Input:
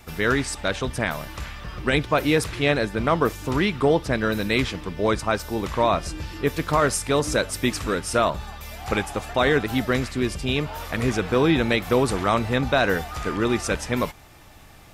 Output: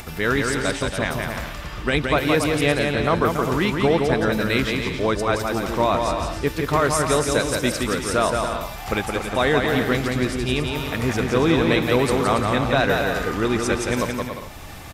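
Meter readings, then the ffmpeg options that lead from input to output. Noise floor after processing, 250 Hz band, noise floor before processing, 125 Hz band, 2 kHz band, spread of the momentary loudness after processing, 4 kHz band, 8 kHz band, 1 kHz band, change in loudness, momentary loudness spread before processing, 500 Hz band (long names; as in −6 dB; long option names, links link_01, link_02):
−34 dBFS, +2.0 dB, −47 dBFS, +2.0 dB, +2.0 dB, 7 LU, +2.0 dB, +2.0 dB, +2.5 dB, +2.0 dB, 7 LU, +2.0 dB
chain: -af "acompressor=mode=upward:threshold=-29dB:ratio=2.5,aecho=1:1:170|280.5|352.3|399|429.4:0.631|0.398|0.251|0.158|0.1"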